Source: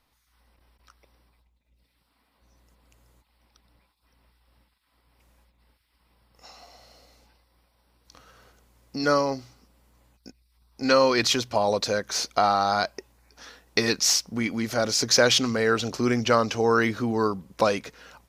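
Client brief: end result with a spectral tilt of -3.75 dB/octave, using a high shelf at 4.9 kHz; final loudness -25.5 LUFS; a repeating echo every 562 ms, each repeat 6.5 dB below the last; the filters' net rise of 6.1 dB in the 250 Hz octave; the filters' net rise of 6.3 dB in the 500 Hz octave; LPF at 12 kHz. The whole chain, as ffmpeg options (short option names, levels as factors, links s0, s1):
-af "lowpass=12000,equalizer=f=250:t=o:g=5.5,equalizer=f=500:t=o:g=6,highshelf=f=4900:g=-7,aecho=1:1:562|1124|1686|2248|2810|3372:0.473|0.222|0.105|0.0491|0.0231|0.0109,volume=0.501"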